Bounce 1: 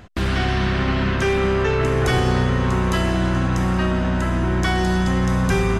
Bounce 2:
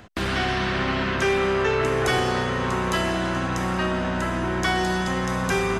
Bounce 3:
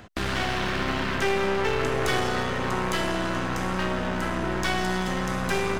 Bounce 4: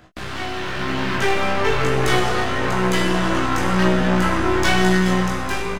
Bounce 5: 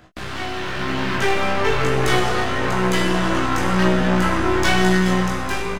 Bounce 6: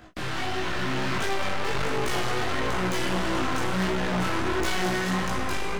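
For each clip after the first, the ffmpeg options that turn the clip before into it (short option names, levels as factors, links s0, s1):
-filter_complex "[0:a]lowshelf=f=110:g=-10,acrossover=split=350|1300[s0][s1][s2];[s0]alimiter=limit=0.0668:level=0:latency=1[s3];[s3][s1][s2]amix=inputs=3:normalize=0"
-af "aeval=exprs='clip(val(0),-1,0.0237)':c=same"
-filter_complex "[0:a]flanger=delay=15.5:depth=3.6:speed=1,asplit=2[s0][s1];[s1]adelay=22,volume=0.531[s2];[s0][s2]amix=inputs=2:normalize=0,dynaudnorm=f=290:g=7:m=3.76"
-af anull
-af "volume=9.44,asoftclip=hard,volume=0.106,flanger=delay=18:depth=6.4:speed=1.5,asoftclip=type=tanh:threshold=0.0562,volume=1.5"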